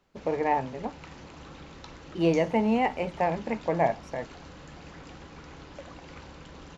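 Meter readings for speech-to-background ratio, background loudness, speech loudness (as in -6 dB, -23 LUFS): 19.0 dB, -46.5 LUFS, -27.5 LUFS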